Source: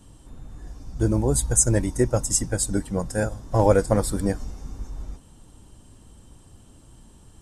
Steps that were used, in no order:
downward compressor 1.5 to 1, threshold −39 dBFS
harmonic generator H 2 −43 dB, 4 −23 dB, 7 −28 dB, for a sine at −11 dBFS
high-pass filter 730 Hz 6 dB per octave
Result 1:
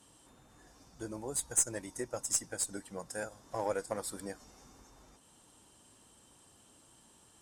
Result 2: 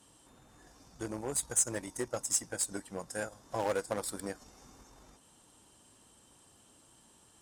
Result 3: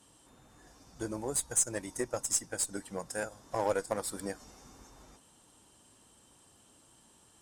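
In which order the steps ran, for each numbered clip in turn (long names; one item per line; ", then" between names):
downward compressor, then high-pass filter, then harmonic generator
harmonic generator, then downward compressor, then high-pass filter
high-pass filter, then harmonic generator, then downward compressor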